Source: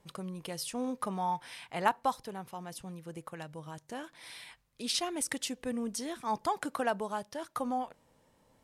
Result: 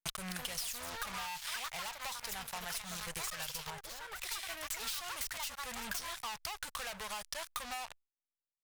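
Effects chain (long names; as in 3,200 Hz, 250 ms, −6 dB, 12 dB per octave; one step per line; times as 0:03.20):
stylus tracing distortion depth 0.2 ms
delay with pitch and tempo change per echo 250 ms, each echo +5 semitones, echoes 2, each echo −6 dB
fuzz pedal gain 42 dB, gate −48 dBFS
guitar amp tone stack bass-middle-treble 10-0-10
downward compressor 10 to 1, threshold −45 dBFS, peak gain reduction 29 dB
0:03.70–0:04.22: high-shelf EQ 2,400 Hz −10.5 dB
level +7 dB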